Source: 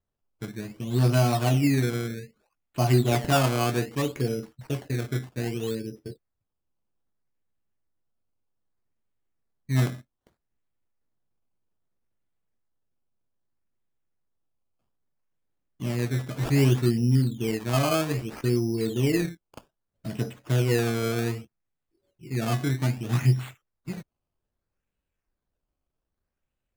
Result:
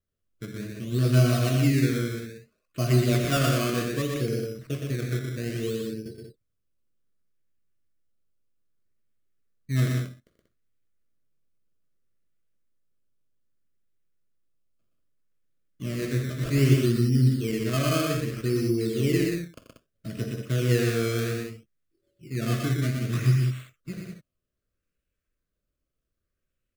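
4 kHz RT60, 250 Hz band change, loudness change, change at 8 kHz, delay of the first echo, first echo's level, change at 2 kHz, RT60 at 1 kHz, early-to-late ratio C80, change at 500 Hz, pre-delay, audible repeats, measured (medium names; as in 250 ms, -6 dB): no reverb, +0.5 dB, 0.0 dB, +0.5 dB, 44 ms, -17.0 dB, +0.5 dB, no reverb, no reverb, 0.0 dB, no reverb, 4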